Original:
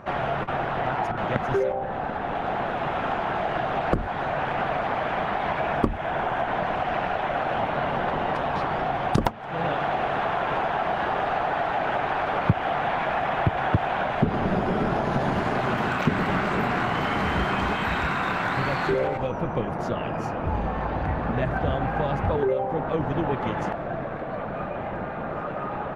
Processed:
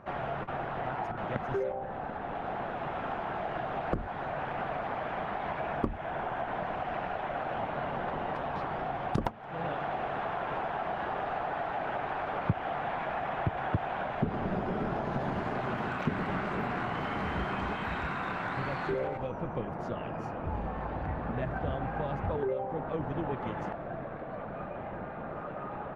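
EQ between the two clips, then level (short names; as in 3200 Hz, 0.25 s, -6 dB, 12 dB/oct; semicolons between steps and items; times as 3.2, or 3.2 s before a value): high shelf 3700 Hz -8 dB; -8.0 dB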